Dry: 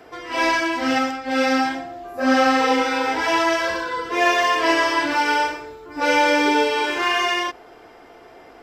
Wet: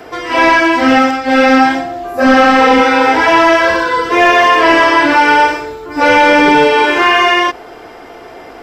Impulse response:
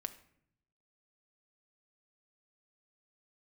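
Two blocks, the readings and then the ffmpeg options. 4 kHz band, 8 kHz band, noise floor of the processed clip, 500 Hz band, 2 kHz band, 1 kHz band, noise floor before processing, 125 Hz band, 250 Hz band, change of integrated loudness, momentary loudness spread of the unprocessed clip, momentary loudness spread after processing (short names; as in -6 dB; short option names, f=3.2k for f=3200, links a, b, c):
+7.5 dB, +4.0 dB, -33 dBFS, +10.5 dB, +10.5 dB, +11.0 dB, -46 dBFS, n/a, +10.5 dB, +10.5 dB, 9 LU, 6 LU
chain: -filter_complex "[0:a]apsyclip=14.5dB,acrossover=split=3000[a][b];[b]acompressor=threshold=-26dB:ratio=4:attack=1:release=60[c];[a][c]amix=inputs=2:normalize=0,volume=-2dB"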